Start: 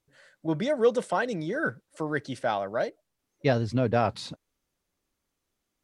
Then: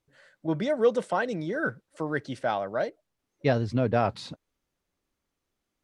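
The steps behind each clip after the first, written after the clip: treble shelf 5.6 kHz -6.5 dB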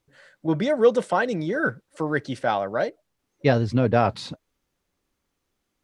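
band-stop 640 Hz, Q 21; trim +5 dB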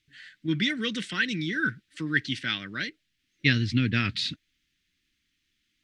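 FFT filter 310 Hz 0 dB, 540 Hz -24 dB, 780 Hz -29 dB, 1.8 kHz +9 dB, 3.3 kHz +13 dB, 10 kHz -2 dB; trim -2.5 dB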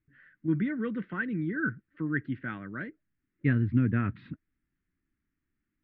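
low-pass 1.4 kHz 24 dB/octave

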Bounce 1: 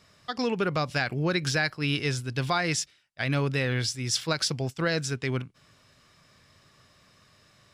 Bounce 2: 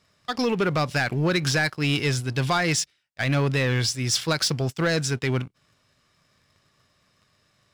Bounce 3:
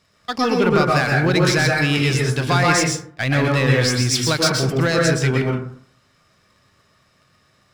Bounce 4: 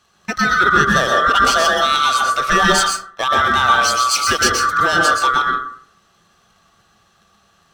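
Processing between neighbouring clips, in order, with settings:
waveshaping leveller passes 2; trim -2 dB
plate-style reverb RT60 0.58 s, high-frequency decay 0.35×, pre-delay 110 ms, DRR -1.5 dB; trim +3 dB
split-band scrambler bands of 1 kHz; trim +2.5 dB

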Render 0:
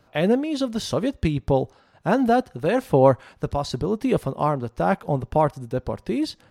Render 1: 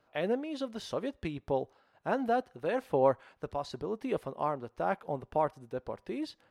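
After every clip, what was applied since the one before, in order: tone controls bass -10 dB, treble -7 dB; trim -9 dB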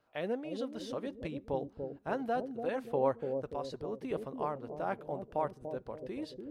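bucket-brigade echo 290 ms, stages 1024, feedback 50%, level -4 dB; trim -4.5 dB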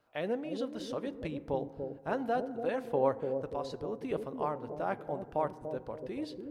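FDN reverb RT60 2 s, high-frequency decay 0.3×, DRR 15.5 dB; trim +1.5 dB

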